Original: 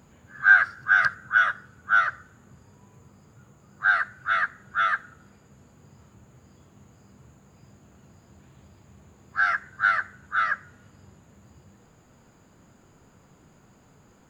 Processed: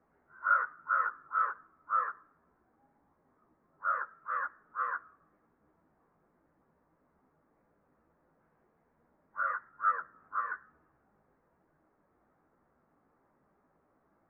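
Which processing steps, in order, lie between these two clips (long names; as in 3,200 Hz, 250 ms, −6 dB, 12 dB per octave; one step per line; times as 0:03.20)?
single-sideband voice off tune −170 Hz 340–2,000 Hz
multi-voice chorus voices 4, 1.1 Hz, delay 16 ms, depth 3.9 ms
level −7 dB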